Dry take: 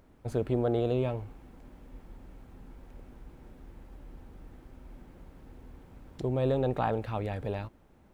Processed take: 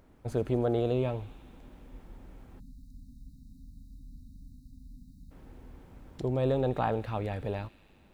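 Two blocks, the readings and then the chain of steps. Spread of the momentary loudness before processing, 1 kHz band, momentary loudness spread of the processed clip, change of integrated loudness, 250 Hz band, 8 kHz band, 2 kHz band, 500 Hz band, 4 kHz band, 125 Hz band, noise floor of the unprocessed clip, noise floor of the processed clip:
11 LU, 0.0 dB, 11 LU, 0.0 dB, 0.0 dB, no reading, 0.0 dB, 0.0 dB, +0.5 dB, 0.0 dB, -60 dBFS, -59 dBFS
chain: feedback echo behind a high-pass 81 ms, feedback 83%, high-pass 2.7 kHz, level -15 dB; spectral selection erased 2.59–5.31 s, 300–3700 Hz

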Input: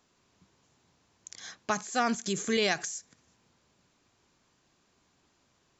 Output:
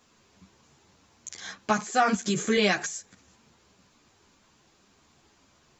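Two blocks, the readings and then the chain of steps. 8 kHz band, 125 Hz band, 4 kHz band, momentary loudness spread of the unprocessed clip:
no reading, +7.0 dB, +2.5 dB, 17 LU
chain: dynamic bell 5.8 kHz, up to -6 dB, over -51 dBFS, Q 0.91; in parallel at -2 dB: peak limiter -24 dBFS, peak gain reduction 9 dB; on the sum: three-phase chorus; trim +5.5 dB

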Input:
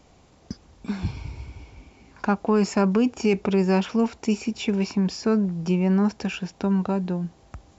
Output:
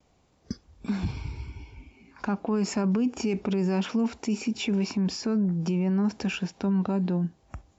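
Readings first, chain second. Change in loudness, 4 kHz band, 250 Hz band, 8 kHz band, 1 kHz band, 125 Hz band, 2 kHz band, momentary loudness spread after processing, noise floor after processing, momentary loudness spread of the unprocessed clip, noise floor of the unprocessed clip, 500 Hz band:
-4.0 dB, -1.5 dB, -3.0 dB, no reading, -7.5 dB, -2.5 dB, -4.0 dB, 13 LU, -65 dBFS, 16 LU, -56 dBFS, -7.0 dB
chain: gate with hold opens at -47 dBFS; spectral noise reduction 10 dB; dynamic bell 250 Hz, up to +6 dB, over -34 dBFS, Q 1.8; peak limiter -19 dBFS, peak gain reduction 10.5 dB

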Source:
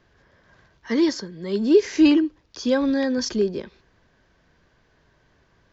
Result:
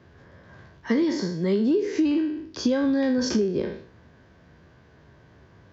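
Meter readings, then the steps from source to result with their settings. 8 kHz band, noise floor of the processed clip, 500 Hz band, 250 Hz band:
no reading, -55 dBFS, -3.5 dB, -2.5 dB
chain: spectral sustain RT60 0.48 s; high-pass 71 Hz 24 dB/octave; tilt EQ -2 dB/octave; compression 20:1, threshold -23 dBFS, peak gain reduction 17.5 dB; trim +4 dB

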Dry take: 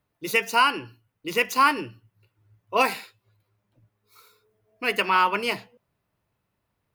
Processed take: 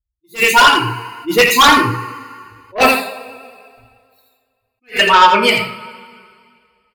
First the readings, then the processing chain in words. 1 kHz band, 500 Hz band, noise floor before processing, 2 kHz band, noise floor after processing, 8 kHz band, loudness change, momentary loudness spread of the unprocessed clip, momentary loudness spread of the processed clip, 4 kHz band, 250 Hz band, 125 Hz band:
+11.5 dB, +11.5 dB, -78 dBFS, +11.5 dB, -73 dBFS, +15.0 dB, +12.0 dB, 15 LU, 18 LU, +15.0 dB, +13.0 dB, +18.0 dB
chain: expander on every frequency bin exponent 2; peaking EQ 5.7 kHz -12.5 dB 0.21 oct; in parallel at -2.5 dB: compression, threshold -31 dBFS, peak gain reduction 14 dB; on the sum: two-slope reverb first 0.4 s, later 2.1 s, from -21 dB, DRR -2 dB; vibrato 9.4 Hz 27 cents; sine folder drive 11 dB, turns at -2 dBFS; on a send: delay 84 ms -8.5 dB; on the sum: attacks held to a fixed rise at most 300 dB/s; trim -2 dB

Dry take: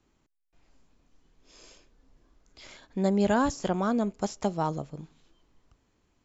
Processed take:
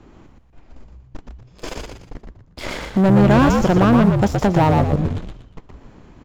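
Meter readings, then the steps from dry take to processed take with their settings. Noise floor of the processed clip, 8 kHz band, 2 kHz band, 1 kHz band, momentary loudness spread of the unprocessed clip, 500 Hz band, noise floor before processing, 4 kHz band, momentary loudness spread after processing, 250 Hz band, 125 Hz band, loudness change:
-50 dBFS, no reading, +13.0 dB, +11.5 dB, 14 LU, +11.0 dB, -73 dBFS, +11.5 dB, 20 LU, +13.5 dB, +19.0 dB, +12.5 dB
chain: low-pass 1.2 kHz 6 dB/octave; gate -57 dBFS, range -15 dB; in parallel at +3 dB: compression, threshold -36 dBFS, peak gain reduction 14.5 dB; on the sum: waveshaping leveller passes 3; reverse; upward compressor, threshold -21 dBFS; reverse; frequency-shifting echo 119 ms, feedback 34%, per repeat -64 Hz, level -3.5 dB; trim +3 dB

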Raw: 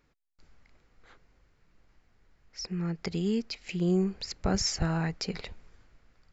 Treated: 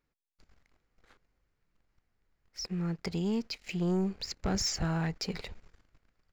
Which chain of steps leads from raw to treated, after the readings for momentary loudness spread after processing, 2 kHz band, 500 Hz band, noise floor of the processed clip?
10 LU, -2.0 dB, -3.5 dB, -83 dBFS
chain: waveshaping leveller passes 2; trim -8 dB

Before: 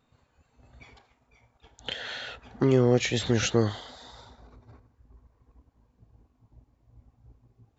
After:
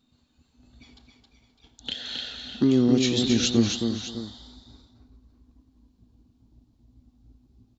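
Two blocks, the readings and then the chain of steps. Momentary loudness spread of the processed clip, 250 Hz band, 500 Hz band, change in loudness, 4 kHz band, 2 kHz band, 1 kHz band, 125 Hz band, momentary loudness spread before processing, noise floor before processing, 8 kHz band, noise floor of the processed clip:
15 LU, +6.5 dB, -2.5 dB, +2.5 dB, +6.0 dB, -3.5 dB, -6.0 dB, -2.0 dB, 19 LU, -70 dBFS, no reading, -67 dBFS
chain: graphic EQ 125/250/500/1000/2000/4000 Hz -6/+10/-9/-6/-8/+9 dB; multi-tap echo 92/269/526/606 ms -19.5/-4.5/-20/-12.5 dB

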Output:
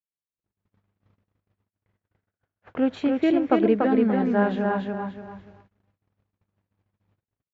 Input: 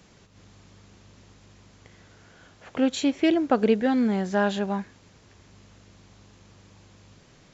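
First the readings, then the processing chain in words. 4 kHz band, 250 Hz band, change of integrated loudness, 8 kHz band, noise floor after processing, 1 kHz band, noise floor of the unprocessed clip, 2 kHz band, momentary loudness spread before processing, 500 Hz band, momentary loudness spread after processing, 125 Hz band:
-7.5 dB, +1.5 dB, +1.5 dB, no reading, under -85 dBFS, +2.0 dB, -56 dBFS, -0.5 dB, 8 LU, +2.0 dB, 13 LU, +1.5 dB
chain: low-pass 2 kHz 12 dB/octave; on a send: feedback delay 289 ms, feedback 32%, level -3 dB; on the sum: gate -46 dBFS, range -55 dB

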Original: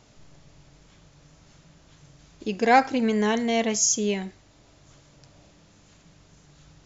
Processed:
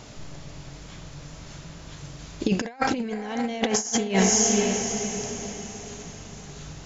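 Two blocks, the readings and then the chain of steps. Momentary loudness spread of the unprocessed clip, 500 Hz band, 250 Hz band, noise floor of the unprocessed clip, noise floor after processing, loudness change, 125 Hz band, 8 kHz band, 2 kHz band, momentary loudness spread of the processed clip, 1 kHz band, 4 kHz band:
14 LU, -0.5 dB, +1.0 dB, -57 dBFS, -43 dBFS, -1.5 dB, +7.0 dB, no reading, -2.0 dB, 22 LU, -5.5 dB, +3.0 dB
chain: echo that smears into a reverb 536 ms, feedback 41%, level -10.5 dB; compressor with a negative ratio -29 dBFS, ratio -0.5; trim +6 dB

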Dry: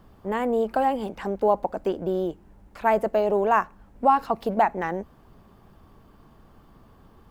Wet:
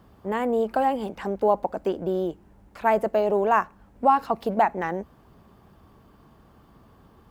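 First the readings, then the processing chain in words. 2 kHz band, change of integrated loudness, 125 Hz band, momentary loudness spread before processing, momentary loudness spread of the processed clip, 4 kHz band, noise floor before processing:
0.0 dB, 0.0 dB, 0.0 dB, 9 LU, 9 LU, no reading, -54 dBFS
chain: high-pass 46 Hz

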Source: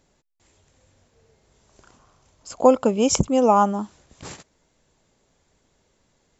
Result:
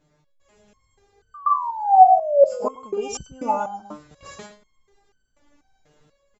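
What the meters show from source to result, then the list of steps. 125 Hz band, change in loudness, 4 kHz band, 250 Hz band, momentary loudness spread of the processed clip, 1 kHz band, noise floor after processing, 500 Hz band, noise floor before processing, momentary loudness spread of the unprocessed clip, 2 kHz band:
under -15 dB, 0.0 dB, -9.0 dB, -14.5 dB, 17 LU, +7.5 dB, -68 dBFS, 0.0 dB, -67 dBFS, 10 LU, -4.0 dB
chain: treble shelf 3.3 kHz -9.5 dB; painted sound fall, 1.34–2.74 s, 440–1200 Hz -16 dBFS; level rider gain up to 6.5 dB; echo from a far wall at 19 m, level -7 dB; in parallel at +0.5 dB: compression, threshold -20 dBFS, peak gain reduction 12 dB; on the sum: resonator arpeggio 4.1 Hz 150–1500 Hz; trim +6.5 dB

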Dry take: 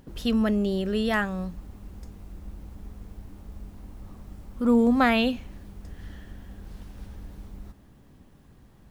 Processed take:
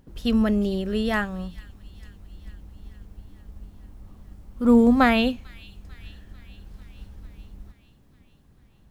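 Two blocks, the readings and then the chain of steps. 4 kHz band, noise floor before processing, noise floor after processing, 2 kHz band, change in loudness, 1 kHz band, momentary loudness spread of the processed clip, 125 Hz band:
+1.0 dB, -54 dBFS, -57 dBFS, +1.5 dB, +3.0 dB, +2.0 dB, 17 LU, +1.0 dB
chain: bass shelf 130 Hz +5 dB; feedback echo behind a high-pass 445 ms, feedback 66%, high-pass 2.8 kHz, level -11.5 dB; upward expansion 1.5:1, over -35 dBFS; trim +3.5 dB

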